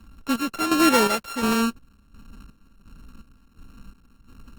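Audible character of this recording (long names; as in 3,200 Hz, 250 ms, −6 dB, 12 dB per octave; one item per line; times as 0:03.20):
a buzz of ramps at a fixed pitch in blocks of 32 samples
chopped level 1.4 Hz, depth 65%, duty 50%
Opus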